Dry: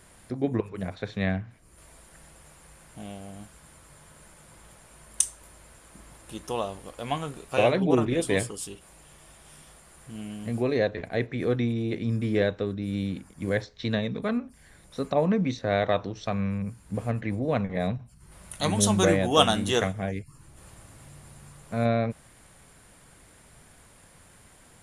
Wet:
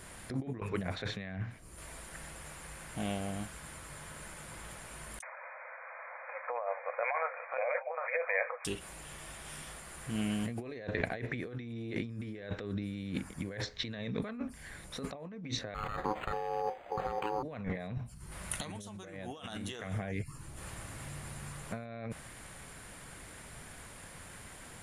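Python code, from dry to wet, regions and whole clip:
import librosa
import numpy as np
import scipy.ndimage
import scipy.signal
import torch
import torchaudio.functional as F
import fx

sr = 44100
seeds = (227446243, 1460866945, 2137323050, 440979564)

y = fx.chain(x, sr, fx.over_compress(threshold_db=-29.0, ratio=-1.0),
    fx.brickwall_bandpass(low_hz=480.0, high_hz=2500.0),
    fx.dynamic_eq(hz=1000.0, q=1.2, threshold_db=-42.0, ratio=4.0, max_db=-4), at=(5.22, 8.65))
y = fx.chain(y, sr, fx.cvsd(bps=64000),
    fx.ring_mod(carrier_hz=640.0),
    fx.resample_linear(factor=8), at=(15.74, 17.43))
y = fx.over_compress(y, sr, threshold_db=-36.0, ratio=-1.0)
y = fx.dynamic_eq(y, sr, hz=1900.0, q=0.96, threshold_db=-56.0, ratio=4.0, max_db=5)
y = F.gain(torch.from_numpy(y), -3.0).numpy()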